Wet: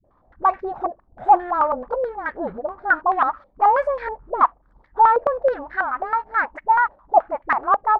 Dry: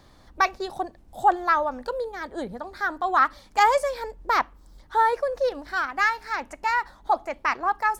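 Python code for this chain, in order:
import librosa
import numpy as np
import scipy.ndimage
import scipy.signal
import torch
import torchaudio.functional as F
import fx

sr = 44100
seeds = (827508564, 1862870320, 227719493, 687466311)

y = fx.leveller(x, sr, passes=2)
y = fx.dispersion(y, sr, late='highs', ms=49.0, hz=330.0)
y = fx.filter_held_lowpass(y, sr, hz=9.3, low_hz=610.0, high_hz=1800.0)
y = F.gain(torch.from_numpy(y), -6.5).numpy()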